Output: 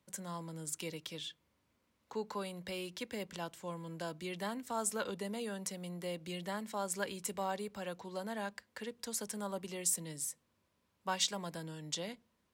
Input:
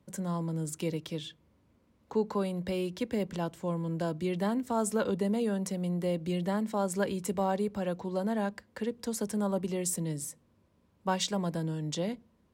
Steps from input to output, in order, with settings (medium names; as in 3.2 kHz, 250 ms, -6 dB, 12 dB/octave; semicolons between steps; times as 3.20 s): tilt shelf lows -7 dB, about 780 Hz; trim -6.5 dB